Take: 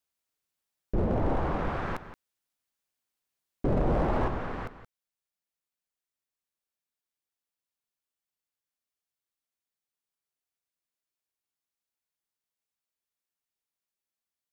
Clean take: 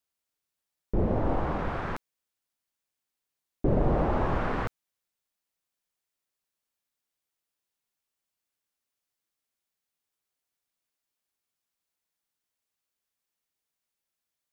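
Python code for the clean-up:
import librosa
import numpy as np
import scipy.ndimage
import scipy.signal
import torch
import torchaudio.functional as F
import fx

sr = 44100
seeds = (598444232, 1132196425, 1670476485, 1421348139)

y = fx.fix_declip(x, sr, threshold_db=-20.5)
y = fx.fix_echo_inverse(y, sr, delay_ms=174, level_db=-13.0)
y = fx.fix_level(y, sr, at_s=4.28, step_db=6.5)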